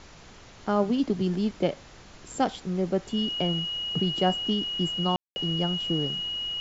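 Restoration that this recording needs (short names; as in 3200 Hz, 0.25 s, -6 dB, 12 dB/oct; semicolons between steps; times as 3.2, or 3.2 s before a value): notch 2900 Hz, Q 30; room tone fill 5.16–5.36; noise print and reduce 24 dB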